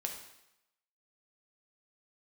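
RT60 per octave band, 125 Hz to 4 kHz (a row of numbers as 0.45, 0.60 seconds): 0.75, 0.80, 0.80, 0.90, 0.85, 0.85 seconds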